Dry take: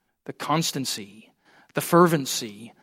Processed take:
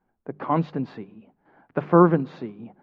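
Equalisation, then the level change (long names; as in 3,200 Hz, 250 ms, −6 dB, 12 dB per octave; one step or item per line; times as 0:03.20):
low-pass filter 1,200 Hz 12 dB per octave
high-frequency loss of the air 180 metres
mains-hum notches 50/100/150/200 Hz
+2.5 dB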